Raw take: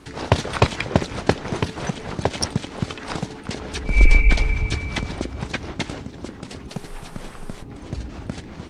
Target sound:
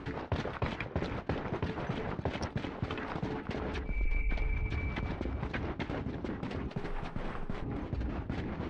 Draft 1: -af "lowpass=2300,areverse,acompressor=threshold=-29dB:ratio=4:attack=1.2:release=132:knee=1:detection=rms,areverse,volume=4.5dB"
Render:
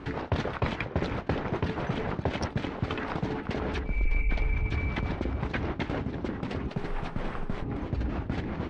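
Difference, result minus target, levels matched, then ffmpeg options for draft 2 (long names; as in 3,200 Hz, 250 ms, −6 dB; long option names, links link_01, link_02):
downward compressor: peak gain reduction −5 dB
-af "lowpass=2300,areverse,acompressor=threshold=-36dB:ratio=4:attack=1.2:release=132:knee=1:detection=rms,areverse,volume=4.5dB"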